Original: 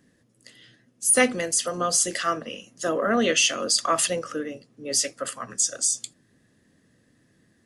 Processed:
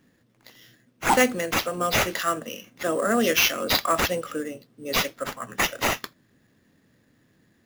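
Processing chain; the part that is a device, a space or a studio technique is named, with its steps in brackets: early companding sampler (sample-rate reducer 8.7 kHz, jitter 0%; companded quantiser 8-bit)

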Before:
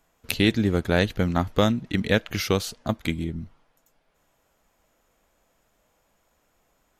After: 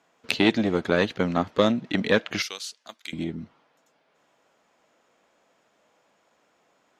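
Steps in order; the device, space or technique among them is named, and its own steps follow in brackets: 2.42–3.13 s: differentiator; public-address speaker with an overloaded transformer (transformer saturation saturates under 580 Hz; band-pass 220–5500 Hz); trim +4 dB

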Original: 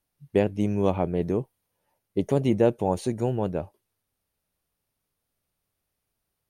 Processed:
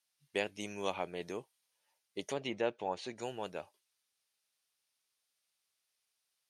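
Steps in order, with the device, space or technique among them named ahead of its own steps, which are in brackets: piezo pickup straight into a mixer (low-pass 5.5 kHz 12 dB/octave; differentiator); 2.23–3.23 s: low-pass that closes with the level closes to 2.8 kHz, closed at -43 dBFS; trim +10 dB

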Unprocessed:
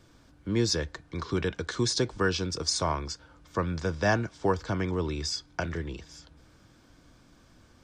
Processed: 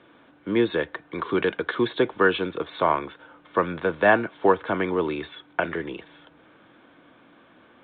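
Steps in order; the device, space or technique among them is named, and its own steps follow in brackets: telephone (band-pass 290–3300 Hz; trim +8.5 dB; A-law 64 kbps 8 kHz)

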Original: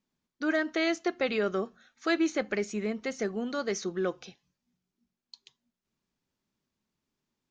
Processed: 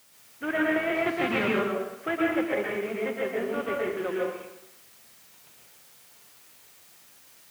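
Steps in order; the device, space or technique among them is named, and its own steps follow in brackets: army field radio (band-pass 310–3300 Hz; CVSD coder 16 kbps; white noise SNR 23 dB); high-pass 78 Hz; 0.95–1.45 s: graphic EQ 125/250/500/1000/4000 Hz +11/+10/-11/+7/+10 dB; plate-style reverb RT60 0.86 s, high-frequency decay 0.8×, pre-delay 105 ms, DRR -3.5 dB

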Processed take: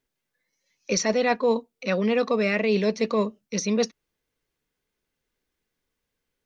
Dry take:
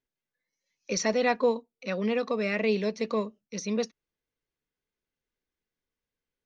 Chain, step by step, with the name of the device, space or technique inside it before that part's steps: compression on the reversed sound (reverse; compression, threshold -27 dBFS, peak gain reduction 8.5 dB; reverse); trim +8.5 dB

